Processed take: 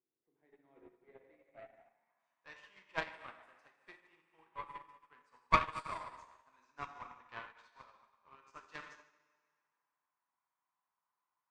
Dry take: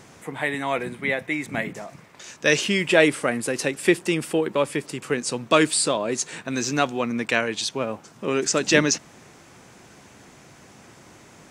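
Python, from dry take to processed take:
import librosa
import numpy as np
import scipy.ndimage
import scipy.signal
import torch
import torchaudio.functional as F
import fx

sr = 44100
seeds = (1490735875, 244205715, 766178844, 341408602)

p1 = fx.level_steps(x, sr, step_db=14)
p2 = x + (p1 * 10.0 ** (-3.0 / 20.0))
p3 = fx.high_shelf(p2, sr, hz=4700.0, db=-8.0)
p4 = fx.rev_plate(p3, sr, seeds[0], rt60_s=2.2, hf_ratio=0.9, predelay_ms=0, drr_db=-2.0)
p5 = fx.filter_sweep_bandpass(p4, sr, from_hz=370.0, to_hz=1000.0, start_s=1.05, end_s=2.17, q=5.5)
p6 = fx.tone_stack(p5, sr, knobs='5-5-5')
p7 = p6 + fx.echo_feedback(p6, sr, ms=150, feedback_pct=56, wet_db=-11, dry=0)
p8 = fx.cheby_harmonics(p7, sr, harmonics=(5, 6, 7), levels_db=(-9, -10, -16), full_scale_db=-20.0)
p9 = fx.upward_expand(p8, sr, threshold_db=-50.0, expansion=2.5)
y = p9 * 10.0 ** (7.0 / 20.0)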